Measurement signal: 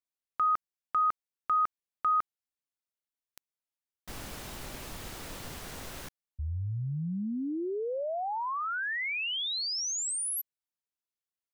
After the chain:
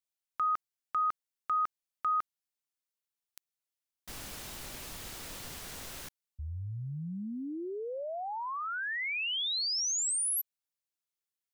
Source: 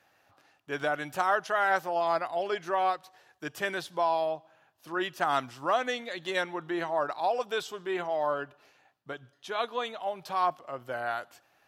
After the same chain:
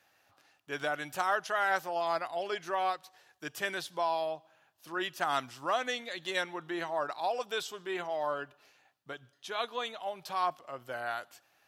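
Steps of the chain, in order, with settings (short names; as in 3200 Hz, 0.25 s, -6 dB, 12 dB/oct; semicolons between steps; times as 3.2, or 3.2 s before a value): high shelf 2100 Hz +7 dB; gain -5 dB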